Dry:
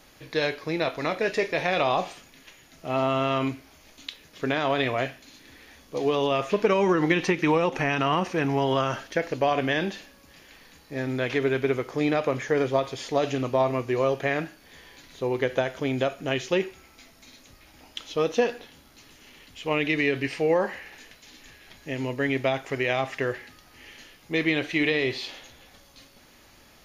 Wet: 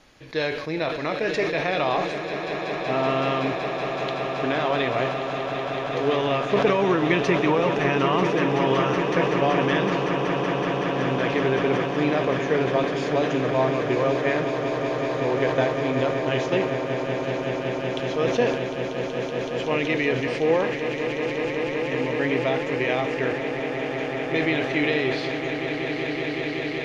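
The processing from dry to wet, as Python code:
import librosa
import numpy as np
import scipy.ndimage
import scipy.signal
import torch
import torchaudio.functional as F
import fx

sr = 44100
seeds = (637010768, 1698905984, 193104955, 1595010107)

y = fx.air_absorb(x, sr, metres=64.0)
y = fx.echo_swell(y, sr, ms=188, loudest=8, wet_db=-11.0)
y = fx.sustainer(y, sr, db_per_s=57.0)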